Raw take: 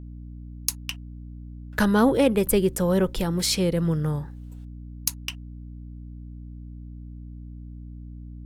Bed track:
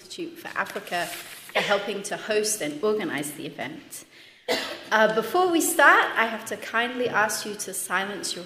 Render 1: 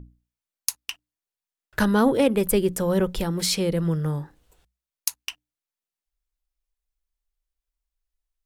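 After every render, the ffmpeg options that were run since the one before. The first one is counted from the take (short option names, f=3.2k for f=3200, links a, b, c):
-af "bandreject=f=60:t=h:w=6,bandreject=f=120:t=h:w=6,bandreject=f=180:t=h:w=6,bandreject=f=240:t=h:w=6,bandreject=f=300:t=h:w=6"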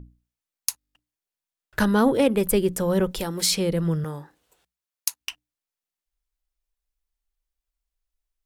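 -filter_complex "[0:a]asettb=1/sr,asplit=3[a][b][c];[a]atrim=end=3.114[d];[b]atrim=start=3.11:end=3.51,asetpts=PTS-STARTPTS,afade=t=in:d=0.004:c=qsin,afade=t=out:st=0.396:d=0.004:c=qsin,bass=f=250:g=-7,treble=f=4k:g=4[e];[c]atrim=start=3.506[f];[d][e]acrossfade=d=0.004:c1=hsin:c2=qsin[g];[g][f]acrossfade=d=0.004:c1=qsin:c2=hsin,asettb=1/sr,asplit=3[h][i][j];[h]atrim=end=4.044[k];[i]atrim=start=4.04:end=5.21,asetpts=PTS-STARTPTS,afade=t=in:d=0.004:c=qsin,afade=t=out:st=1.166:d=0.004:c=qsin,highpass=f=370:p=1[l];[j]atrim=start=5.206[m];[k][l]acrossfade=d=0.004:c1=hsin:c2=qsin[n];[n][m]acrossfade=d=0.004:c1=qsin:c2=hsin,asplit=9[o][p][q][r][s][t][u][v][w];[o]atrim=end=0.812[x];[p]atrim=start=0.788:end=0.812[y];[q]atrim=start=0.788:end=0.812[z];[r]atrim=start=0.788:end=0.812[aa];[s]atrim=start=0.788:end=0.812[ab];[t]atrim=start=0.788:end=0.812[ac];[u]atrim=start=0.788:end=0.812[ad];[v]atrim=start=0.788:end=0.812[ae];[w]atrim=start=0.948[af];[x][y]acrossfade=d=0.004:c1=hsin:c2=hsin[ag];[ag][z]acrossfade=d=0.004:c1=hsin:c2=hsin[ah];[ah][aa]acrossfade=d=0.004:c1=hsin:c2=hsin[ai];[ai][ab]acrossfade=d=0.004:c1=hsin:c2=hsin[aj];[aj][ac]acrossfade=d=0.004:c1=hsin:c2=hsin[ak];[ak][ad]acrossfade=d=0.004:c1=hsin:c2=hsin[al];[al][ae]acrossfade=d=0.004:c1=hsin:c2=hsin[am];[am][af]acrossfade=d=0.004:c1=hsin:c2=hsin"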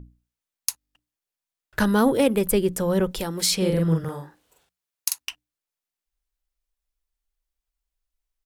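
-filter_complex "[0:a]asettb=1/sr,asplit=3[a][b][c];[a]atrim=end=1.854[d];[b]atrim=start=1.85:end=2.39,asetpts=PTS-STARTPTS,afade=t=in:d=0.004:c=qsin,afade=t=out:st=0.536:d=0.004:c=qsin,highshelf=f=9.2k:g=10[e];[c]atrim=start=2.386[f];[d][e]acrossfade=d=0.004:c1=hsin:c2=qsin[g];[g][f]acrossfade=d=0.004:c1=qsin:c2=hsin,asplit=3[h][i][j];[h]afade=t=out:st=3.6:d=0.02[k];[i]asplit=2[l][m];[m]adelay=43,volume=-2.5dB[n];[l][n]amix=inputs=2:normalize=0,afade=t=in:st=3.6:d=0.02,afade=t=out:st=5.23:d=0.02[o];[j]afade=t=in:st=5.23:d=0.02[p];[k][o][p]amix=inputs=3:normalize=0"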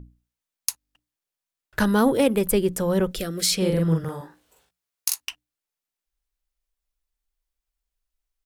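-filter_complex "[0:a]asettb=1/sr,asplit=3[a][b][c];[a]atrim=end=3.124[d];[b]atrim=start=3.12:end=3.58,asetpts=PTS-STARTPTS,afade=t=in:d=0.004:c=qsin,afade=t=out:st=0.456:d=0.004:c=qsin,asuperstop=centerf=920:order=4:qfactor=2[e];[c]atrim=start=3.576[f];[d][e]acrossfade=d=0.004:c1=hsin:c2=qsin[g];[g][f]acrossfade=d=0.004:c1=qsin:c2=hsin,asettb=1/sr,asplit=3[h][i][j];[h]atrim=end=4.194[k];[i]atrim=start=4.19:end=5.25,asetpts=PTS-STARTPTS,afade=t=in:d=0.004:c=qsin,afade=t=out:st=1.056:d=0.004:c=qsin,asplit=2[l][m];[m]adelay=17,volume=-5dB[n];[l][n]amix=inputs=2:normalize=0,atrim=end_sample=46746[o];[j]atrim=start=5.246[p];[k][o]acrossfade=d=0.004:c1=hsin:c2=qsin[q];[q][p]acrossfade=d=0.004:c1=qsin:c2=hsin"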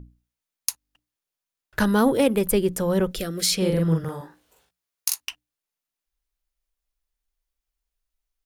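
-af "bandreject=f=7.9k:w=21"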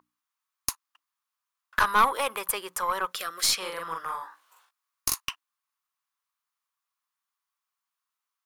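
-af "highpass=f=1.1k:t=q:w=4.9,aeval=exprs='(tanh(3.98*val(0)+0.35)-tanh(0.35))/3.98':c=same"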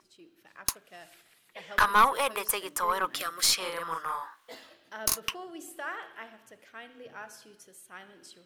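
-filter_complex "[1:a]volume=-21.5dB[a];[0:a][a]amix=inputs=2:normalize=0"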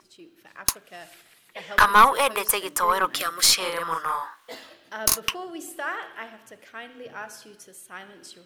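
-af "volume=6.5dB"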